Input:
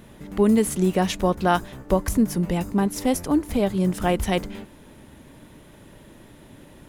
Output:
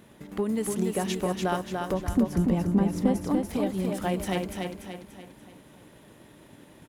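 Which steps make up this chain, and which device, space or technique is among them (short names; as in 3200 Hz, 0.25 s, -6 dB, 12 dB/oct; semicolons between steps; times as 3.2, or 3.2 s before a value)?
drum-bus smash (transient shaper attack +5 dB, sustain 0 dB; compressor, threshold -16 dBFS, peak gain reduction 7 dB; soft clip -10 dBFS, distortion -21 dB); HPF 140 Hz 6 dB/oct; 1.94–3.29 tilt -2.5 dB/oct; feedback echo 0.29 s, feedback 44%, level -4 dB; gain -5.5 dB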